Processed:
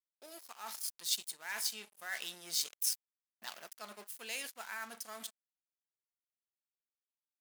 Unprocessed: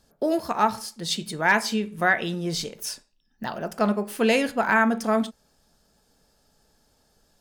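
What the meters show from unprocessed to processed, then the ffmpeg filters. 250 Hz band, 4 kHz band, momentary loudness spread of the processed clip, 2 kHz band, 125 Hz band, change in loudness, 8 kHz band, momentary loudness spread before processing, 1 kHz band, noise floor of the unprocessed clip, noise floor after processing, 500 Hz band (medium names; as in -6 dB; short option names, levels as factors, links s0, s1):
-34.5 dB, -7.5 dB, 15 LU, -19.5 dB, -35.5 dB, -14.0 dB, -2.5 dB, 12 LU, -24.5 dB, -66 dBFS, under -85 dBFS, -28.5 dB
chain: -af "aeval=exprs='sgn(val(0))*max(abs(val(0))-0.015,0)':c=same,areverse,acompressor=threshold=0.0355:ratio=6,areverse,aderivative,dynaudnorm=f=410:g=3:m=1.58"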